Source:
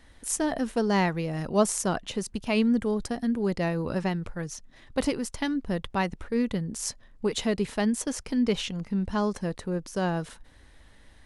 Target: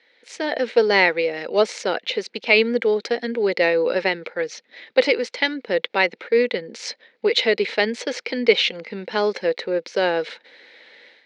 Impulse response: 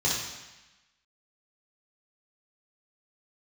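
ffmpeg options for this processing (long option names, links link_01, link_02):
-af "lowshelf=frequency=460:gain=-6,dynaudnorm=framelen=270:gausssize=3:maxgain=12.5dB,highpass=frequency=280:width=0.5412,highpass=frequency=280:width=1.3066,equalizer=frequency=280:width_type=q:width=4:gain=-6,equalizer=frequency=490:width_type=q:width=4:gain=9,equalizer=frequency=700:width_type=q:width=4:gain=-4,equalizer=frequency=1100:width_type=q:width=4:gain=-10,equalizer=frequency=2200:width_type=q:width=4:gain=10,equalizer=frequency=4100:width_type=q:width=4:gain=6,lowpass=frequency=4600:width=0.5412,lowpass=frequency=4600:width=1.3066,volume=-1.5dB"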